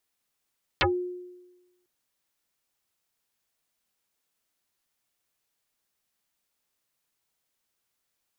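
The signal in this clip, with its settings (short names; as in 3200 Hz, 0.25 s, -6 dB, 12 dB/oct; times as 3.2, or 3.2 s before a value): FM tone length 1.05 s, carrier 359 Hz, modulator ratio 1.25, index 11, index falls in 0.14 s exponential, decay 1.14 s, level -18 dB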